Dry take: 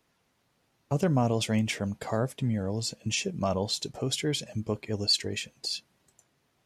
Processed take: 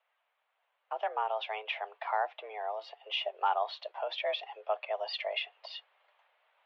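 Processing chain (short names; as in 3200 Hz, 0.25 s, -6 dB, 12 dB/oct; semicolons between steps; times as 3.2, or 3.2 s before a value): mistuned SSB +210 Hz 390–3100 Hz; vocal rider within 4 dB 2 s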